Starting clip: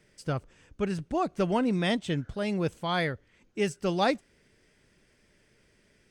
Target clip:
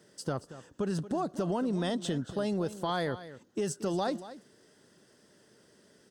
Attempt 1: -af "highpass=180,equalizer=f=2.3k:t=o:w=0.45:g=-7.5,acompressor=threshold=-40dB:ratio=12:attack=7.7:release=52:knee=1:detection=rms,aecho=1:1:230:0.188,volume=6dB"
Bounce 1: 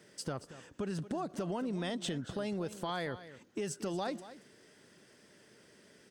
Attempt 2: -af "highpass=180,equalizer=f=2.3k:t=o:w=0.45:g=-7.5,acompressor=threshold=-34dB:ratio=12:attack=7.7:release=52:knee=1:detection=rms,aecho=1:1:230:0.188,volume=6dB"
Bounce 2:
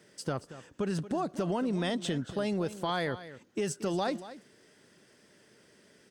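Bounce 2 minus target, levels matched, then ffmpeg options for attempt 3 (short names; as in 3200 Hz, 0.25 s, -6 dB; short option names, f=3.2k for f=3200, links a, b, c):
2000 Hz band +3.0 dB
-af "highpass=180,equalizer=f=2.3k:t=o:w=0.45:g=-18,acompressor=threshold=-34dB:ratio=12:attack=7.7:release=52:knee=1:detection=rms,aecho=1:1:230:0.188,volume=6dB"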